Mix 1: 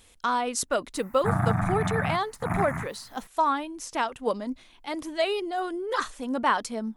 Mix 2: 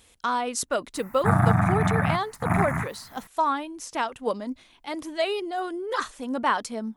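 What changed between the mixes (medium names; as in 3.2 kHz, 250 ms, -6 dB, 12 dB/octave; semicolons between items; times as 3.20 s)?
speech: add high-pass 40 Hz 6 dB/octave; background +5.0 dB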